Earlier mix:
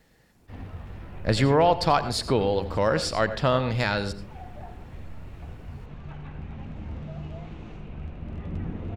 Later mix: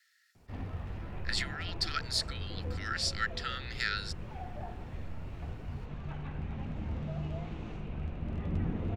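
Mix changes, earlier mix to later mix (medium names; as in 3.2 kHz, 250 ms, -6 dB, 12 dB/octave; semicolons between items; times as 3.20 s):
speech: add rippled Chebyshev high-pass 1.3 kHz, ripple 6 dB; reverb: off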